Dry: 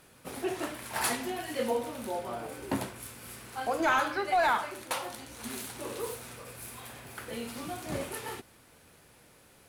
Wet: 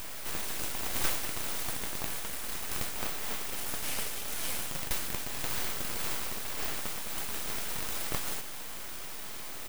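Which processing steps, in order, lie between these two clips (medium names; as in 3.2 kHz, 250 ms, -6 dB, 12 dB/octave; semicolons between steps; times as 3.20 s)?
spectral levelling over time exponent 0.4; pre-emphasis filter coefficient 0.97; doubling 22 ms -13.5 dB; full-wave rectifier; trim +2.5 dB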